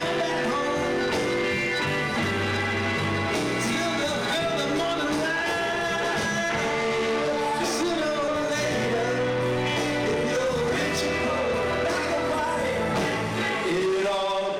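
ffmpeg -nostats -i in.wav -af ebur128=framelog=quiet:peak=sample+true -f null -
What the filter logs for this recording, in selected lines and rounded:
Integrated loudness:
  I:         -24.9 LUFS
  Threshold: -34.9 LUFS
Loudness range:
  LRA:         0.2 LU
  Threshold: -44.9 LUFS
  LRA low:   -25.1 LUFS
  LRA high:  -24.8 LUFS
Sample peak:
  Peak:      -21.2 dBFS
True peak:
  Peak:      -21.1 dBFS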